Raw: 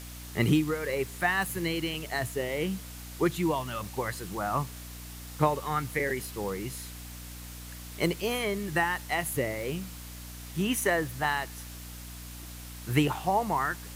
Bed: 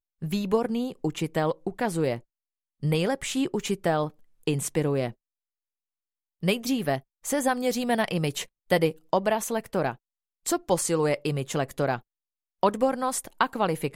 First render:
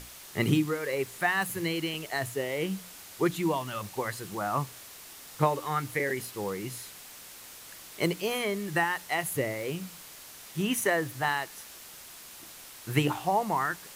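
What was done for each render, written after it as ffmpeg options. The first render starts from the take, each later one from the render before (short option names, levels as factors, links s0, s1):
-af "bandreject=f=60:t=h:w=6,bandreject=f=120:t=h:w=6,bandreject=f=180:t=h:w=6,bandreject=f=240:t=h:w=6,bandreject=f=300:t=h:w=6"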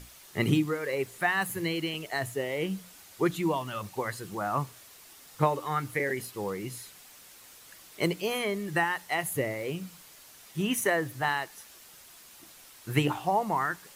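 -af "afftdn=nr=6:nf=-48"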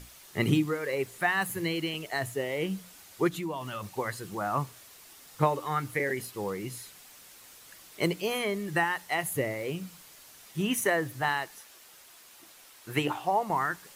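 -filter_complex "[0:a]asplit=3[s0][s1][s2];[s0]afade=t=out:st=3.28:d=0.02[s3];[s1]acompressor=threshold=0.0251:ratio=3:attack=3.2:release=140:knee=1:detection=peak,afade=t=in:st=3.28:d=0.02,afade=t=out:st=3.87:d=0.02[s4];[s2]afade=t=in:st=3.87:d=0.02[s5];[s3][s4][s5]amix=inputs=3:normalize=0,asettb=1/sr,asplit=3[s6][s7][s8];[s6]atrim=end=11.584[s9];[s7]atrim=start=11.58:end=13.5,asetpts=PTS-STARTPTS,afade=t=in:d=0.004:c=qsin,afade=t=out:st=1.916:d=0.004:c=qsin,bass=f=250:g=-8,treble=f=4000:g=-2[s10];[s8]atrim=start=13.496[s11];[s9][s10]acrossfade=d=0.004:c1=hsin:c2=qsin[s12];[s12][s11]acrossfade=d=0.004:c1=qsin:c2=hsin"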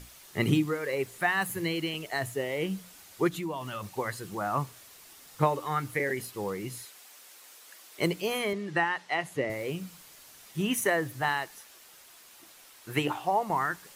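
-filter_complex "[0:a]asettb=1/sr,asplit=3[s0][s1][s2];[s0]atrim=end=6.854[s3];[s1]atrim=start=6.85:end=7.99,asetpts=PTS-STARTPTS,afade=t=in:d=0.004:c=qsin,afade=t=out:st=1.136:d=0.004:c=qsin,highpass=370[s4];[s2]atrim=start=7.986[s5];[s3][s4]acrossfade=d=0.004:c1=hsin:c2=qsin[s6];[s6][s5]acrossfade=d=0.004:c1=qsin:c2=hsin,asettb=1/sr,asplit=3[s7][s8][s9];[s7]atrim=end=8.534[s10];[s8]atrim=start=8.53:end=9.5,asetpts=PTS-STARTPTS,afade=t=in:d=0.004:c=qsin,afade=t=out:st=0.966:d=0.004:c=qsin,highpass=160,lowpass=5100[s11];[s9]atrim=start=9.496[s12];[s10][s11]acrossfade=d=0.004:c1=hsin:c2=qsin[s13];[s13][s12]acrossfade=d=0.004:c1=qsin:c2=hsin"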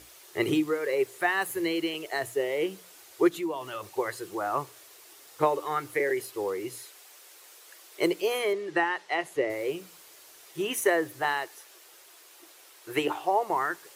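-af "highpass=61,lowshelf=f=280:t=q:w=3:g=-8"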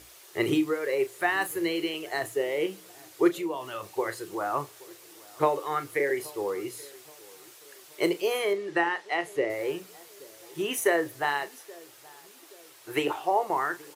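-filter_complex "[0:a]asplit=2[s0][s1];[s1]adelay=35,volume=0.237[s2];[s0][s2]amix=inputs=2:normalize=0,asplit=2[s3][s4];[s4]adelay=826,lowpass=f=970:p=1,volume=0.0841,asplit=2[s5][s6];[s6]adelay=826,lowpass=f=970:p=1,volume=0.5,asplit=2[s7][s8];[s8]adelay=826,lowpass=f=970:p=1,volume=0.5,asplit=2[s9][s10];[s10]adelay=826,lowpass=f=970:p=1,volume=0.5[s11];[s3][s5][s7][s9][s11]amix=inputs=5:normalize=0"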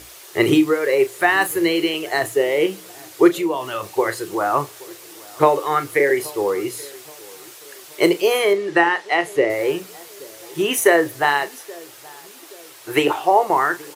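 -af "volume=3.16,alimiter=limit=0.794:level=0:latency=1"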